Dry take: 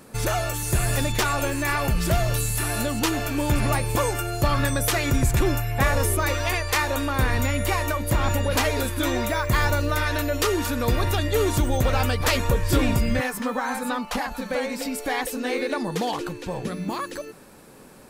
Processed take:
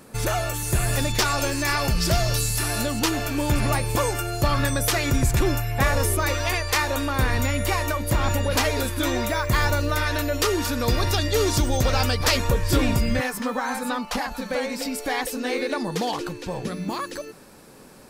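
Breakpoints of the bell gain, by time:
bell 5100 Hz 0.67 oct
0.86 s +0.5 dB
1.41 s +11.5 dB
2.29 s +11.5 dB
3.09 s +3.5 dB
10.46 s +3.5 dB
11.12 s +12 dB
11.9 s +12 dB
12.52 s +4 dB

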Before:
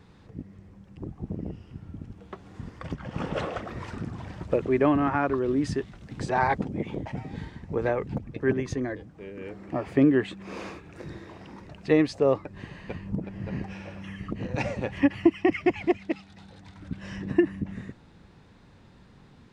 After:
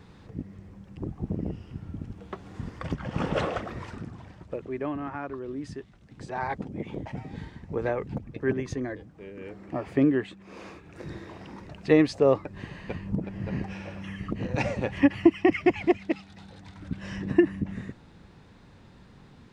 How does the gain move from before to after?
3.5 s +3 dB
4.46 s -10 dB
6.16 s -10 dB
6.99 s -2 dB
10.09 s -2 dB
10.46 s -8.5 dB
11.12 s +1.5 dB

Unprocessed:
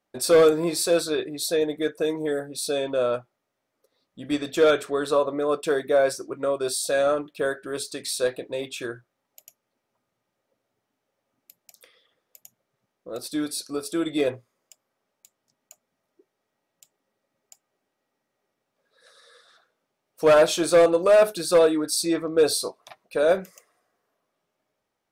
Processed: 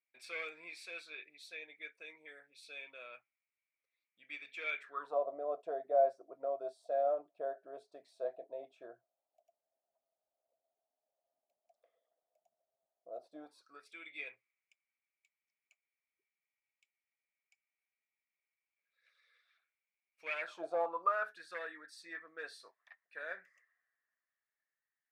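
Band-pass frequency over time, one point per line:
band-pass, Q 11
4.77 s 2300 Hz
5.18 s 670 Hz
13.39 s 670 Hz
13.91 s 2300 Hz
20.4 s 2300 Hz
20.64 s 660 Hz
21.38 s 1800 Hz

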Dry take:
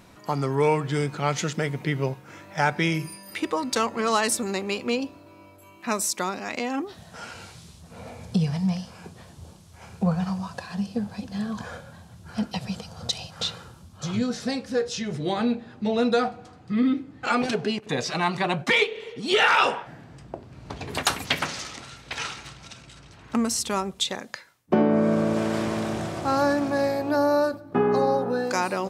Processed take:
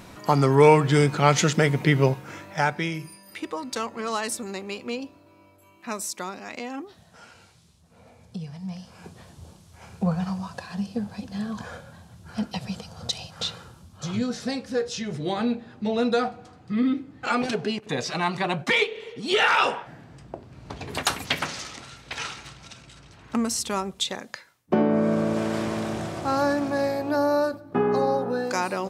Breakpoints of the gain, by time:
2.25 s +6.5 dB
2.92 s -5.5 dB
6.66 s -5.5 dB
7.56 s -12 dB
8.58 s -12 dB
9.06 s -1 dB

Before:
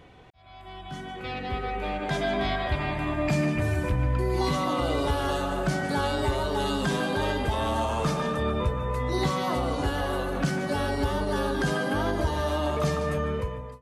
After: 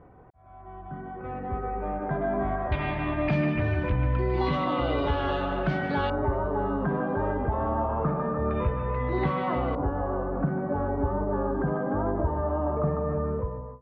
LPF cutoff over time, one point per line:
LPF 24 dB/oct
1400 Hz
from 2.72 s 3300 Hz
from 6.1 s 1400 Hz
from 8.51 s 2500 Hz
from 9.75 s 1200 Hz

